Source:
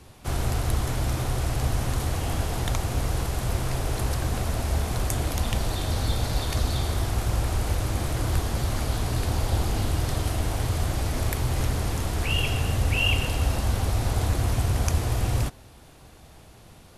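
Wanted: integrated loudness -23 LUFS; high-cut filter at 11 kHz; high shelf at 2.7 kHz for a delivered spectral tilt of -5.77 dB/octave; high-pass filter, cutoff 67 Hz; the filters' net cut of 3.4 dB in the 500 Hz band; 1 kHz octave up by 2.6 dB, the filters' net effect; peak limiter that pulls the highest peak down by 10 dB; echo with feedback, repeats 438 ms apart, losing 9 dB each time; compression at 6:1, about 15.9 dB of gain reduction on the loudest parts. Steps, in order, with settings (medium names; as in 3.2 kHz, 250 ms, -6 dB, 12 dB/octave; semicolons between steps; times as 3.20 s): high-pass 67 Hz; low-pass 11 kHz; peaking EQ 500 Hz -6.5 dB; peaking EQ 1 kHz +7 dB; treble shelf 2.7 kHz -9 dB; compression 6:1, threshold -40 dBFS; peak limiter -38.5 dBFS; feedback delay 438 ms, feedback 35%, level -9 dB; trim +24 dB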